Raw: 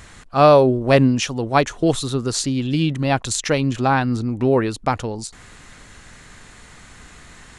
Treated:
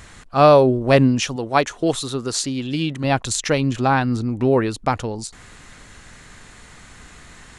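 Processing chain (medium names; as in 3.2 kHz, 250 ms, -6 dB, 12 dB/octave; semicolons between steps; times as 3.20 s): 1.36–3.04 s: bass shelf 190 Hz -9 dB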